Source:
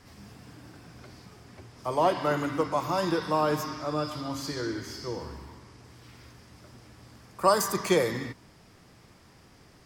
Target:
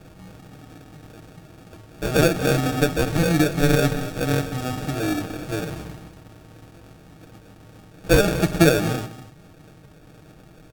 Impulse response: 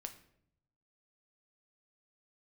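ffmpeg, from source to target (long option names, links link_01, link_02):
-filter_complex "[0:a]adynamicequalizer=threshold=0.00562:dfrequency=160:dqfactor=0.92:tfrequency=160:tqfactor=0.92:attack=5:release=100:ratio=0.375:range=3:mode=boostabove:tftype=bell,acompressor=mode=upward:threshold=-47dB:ratio=2.5,acrusher=samples=40:mix=1:aa=0.000001,asetrate=40517,aresample=44100,aecho=1:1:6.4:0.43,asplit=2[link_01][link_02];[link_02]aecho=0:1:239:0.2[link_03];[link_01][link_03]amix=inputs=2:normalize=0,volume=4.5dB"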